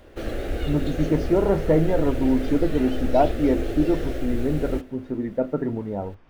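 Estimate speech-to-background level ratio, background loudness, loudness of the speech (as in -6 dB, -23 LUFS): 6.5 dB, -30.5 LUFS, -24.0 LUFS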